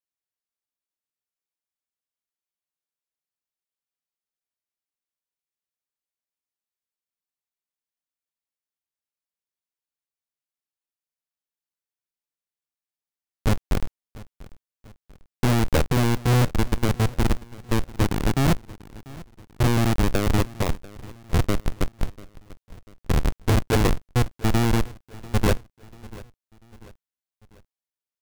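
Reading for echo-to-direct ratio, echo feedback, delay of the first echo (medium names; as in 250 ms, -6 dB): -19.5 dB, 46%, 692 ms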